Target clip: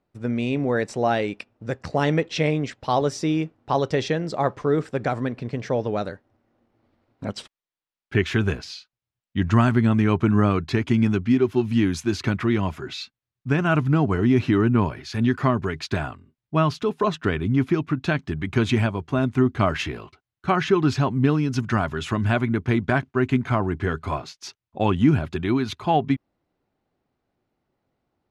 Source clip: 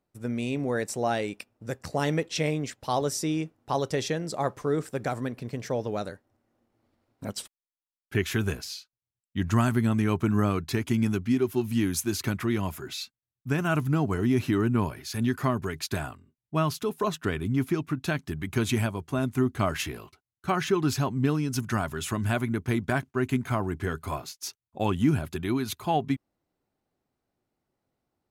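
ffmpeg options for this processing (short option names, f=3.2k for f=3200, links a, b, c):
-af "lowpass=4k,volume=5.5dB"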